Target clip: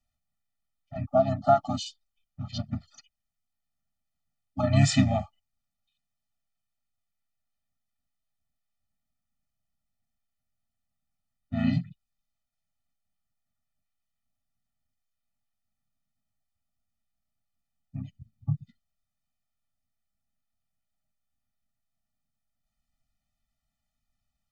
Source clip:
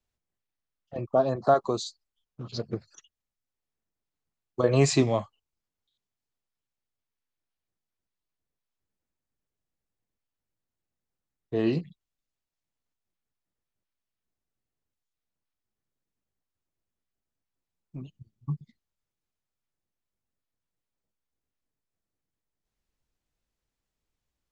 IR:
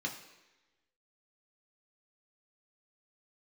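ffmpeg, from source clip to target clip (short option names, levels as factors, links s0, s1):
-filter_complex "[0:a]asplit=2[s0][s1];[s1]asetrate=33038,aresample=44100,atempo=1.33484,volume=0.708[s2];[s0][s2]amix=inputs=2:normalize=0,afftfilt=real='re*eq(mod(floor(b*sr/1024/290),2),0)':imag='im*eq(mod(floor(b*sr/1024/290),2),0)':win_size=1024:overlap=0.75,volume=1.19"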